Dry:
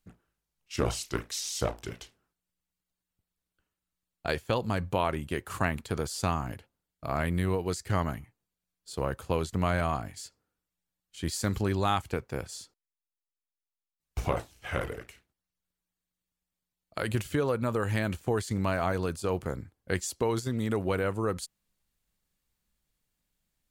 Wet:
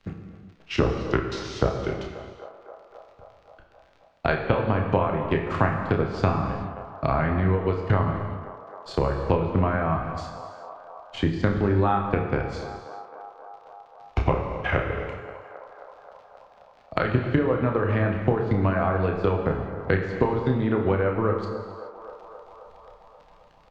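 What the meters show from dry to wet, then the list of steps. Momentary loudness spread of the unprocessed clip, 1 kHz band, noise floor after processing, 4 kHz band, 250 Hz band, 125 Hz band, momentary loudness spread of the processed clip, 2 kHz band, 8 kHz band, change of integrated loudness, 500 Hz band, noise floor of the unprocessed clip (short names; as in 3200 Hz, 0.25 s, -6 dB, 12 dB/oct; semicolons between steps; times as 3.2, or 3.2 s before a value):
13 LU, +6.5 dB, -55 dBFS, -0.5 dB, +7.0 dB, +7.5 dB, 19 LU, +5.5 dB, under -10 dB, +6.0 dB, +7.0 dB, under -85 dBFS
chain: high shelf 11000 Hz +6 dB; treble ducked by the level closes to 1800 Hz, closed at -23.5 dBFS; transient shaper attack +7 dB, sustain -10 dB; in parallel at -0.5 dB: compressor, threshold -29 dBFS, peak gain reduction 12 dB; on the sum: crackle 48/s -47 dBFS; air absorption 220 m; doubler 31 ms -7 dB; on a send: narrowing echo 0.265 s, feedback 73%, band-pass 810 Hz, level -16 dB; on the sum: non-linear reverb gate 0.45 s falling, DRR 3.5 dB; three-band squash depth 40%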